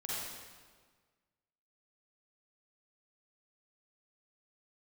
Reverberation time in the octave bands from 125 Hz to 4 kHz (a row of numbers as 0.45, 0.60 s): 1.7, 1.7, 1.6, 1.5, 1.4, 1.3 s